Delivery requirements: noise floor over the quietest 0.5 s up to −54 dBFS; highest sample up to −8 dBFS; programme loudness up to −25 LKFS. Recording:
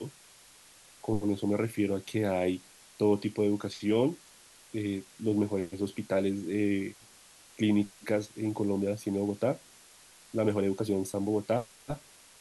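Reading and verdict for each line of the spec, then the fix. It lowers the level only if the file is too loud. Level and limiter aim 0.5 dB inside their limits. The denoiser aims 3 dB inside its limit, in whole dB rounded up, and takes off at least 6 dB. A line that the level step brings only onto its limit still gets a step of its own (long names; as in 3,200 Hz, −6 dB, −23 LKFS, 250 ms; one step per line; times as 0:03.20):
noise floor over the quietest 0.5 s −56 dBFS: in spec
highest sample −14.5 dBFS: in spec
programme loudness −31.0 LKFS: in spec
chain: no processing needed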